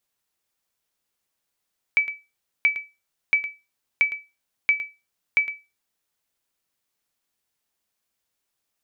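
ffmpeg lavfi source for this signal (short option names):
-f lavfi -i "aevalsrc='0.299*(sin(2*PI*2300*mod(t,0.68))*exp(-6.91*mod(t,0.68)/0.25)+0.2*sin(2*PI*2300*max(mod(t,0.68)-0.11,0))*exp(-6.91*max(mod(t,0.68)-0.11,0)/0.25))':d=4.08:s=44100"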